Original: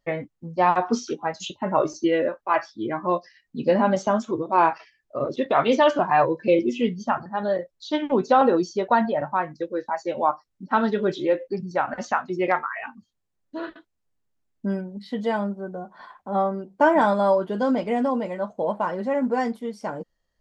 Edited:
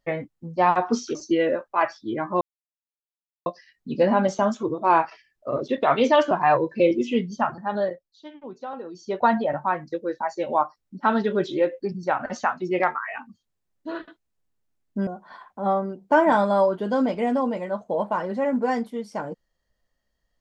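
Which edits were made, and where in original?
1.15–1.88 cut
3.14 insert silence 1.05 s
7.49–8.9 dip -17.5 dB, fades 0.29 s
14.75–15.76 cut

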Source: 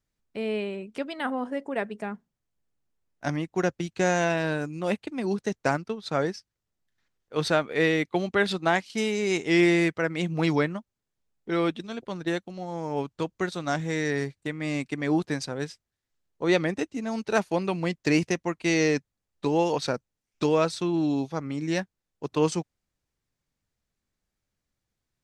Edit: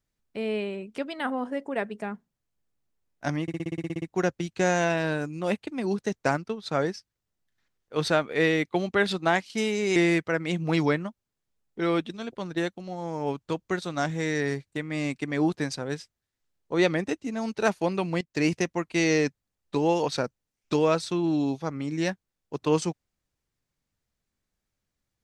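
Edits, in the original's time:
3.42 stutter 0.06 s, 11 plays
9.36–9.66 cut
17.91–18.33 fade in equal-power, from -16.5 dB

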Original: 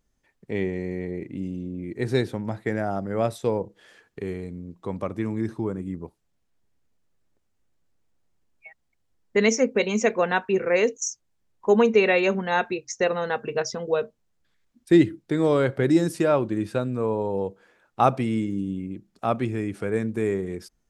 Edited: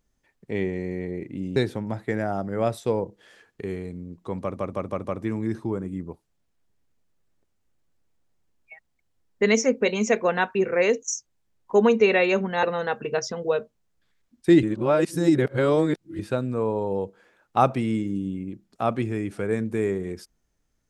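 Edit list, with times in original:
1.56–2.14 cut
4.98 stutter 0.16 s, 5 plays
12.57–13.06 cut
15.06–16.62 reverse

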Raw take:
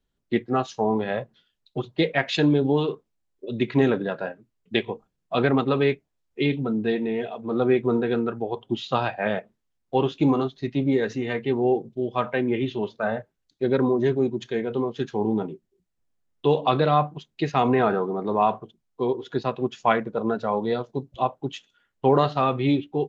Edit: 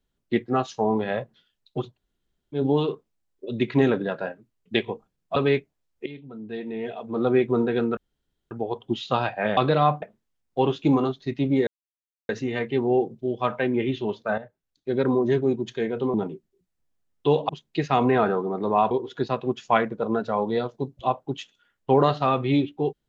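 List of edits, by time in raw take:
1.93–2.57 room tone, crossfade 0.10 s
5.36–5.71 cut
6.41–7.41 fade in quadratic, from -18 dB
8.32 insert room tone 0.54 s
11.03 insert silence 0.62 s
13.12–13.91 fade in, from -13 dB
14.88–15.33 cut
16.68–17.13 move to 9.38
18.55–19.06 cut

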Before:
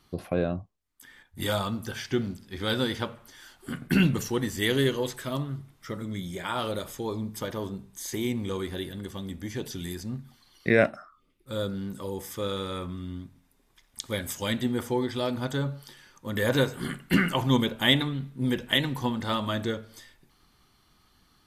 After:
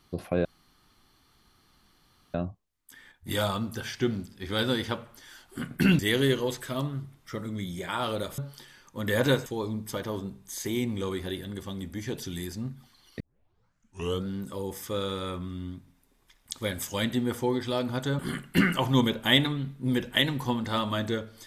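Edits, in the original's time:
0.45 insert room tone 1.89 s
4.1–4.55 cut
10.68 tape start 1.06 s
15.67–16.75 move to 6.94

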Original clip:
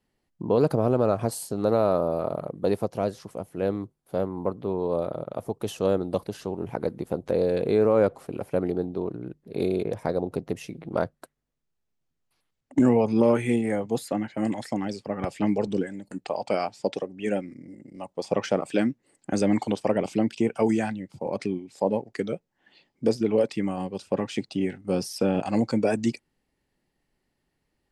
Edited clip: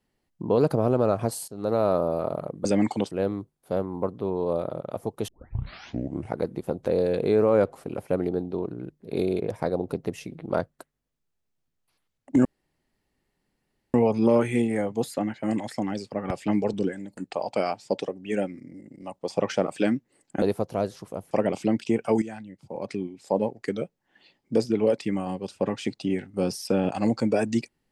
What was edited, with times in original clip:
1.48–1.97 fade in equal-power, from -15.5 dB
2.65–3.54 swap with 19.36–19.82
5.71 tape start 1.09 s
12.88 insert room tone 1.49 s
20.73–21.83 fade in, from -13.5 dB

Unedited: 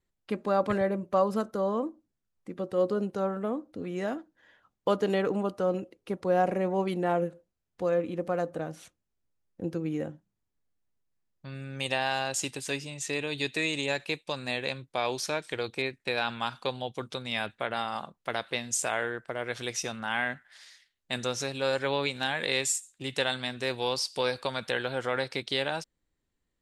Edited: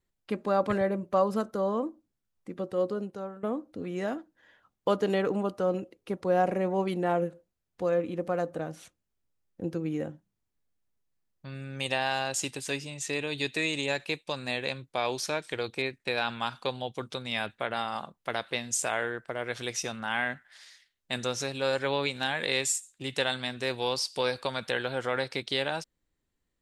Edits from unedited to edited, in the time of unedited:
2.59–3.43 fade out, to -13.5 dB

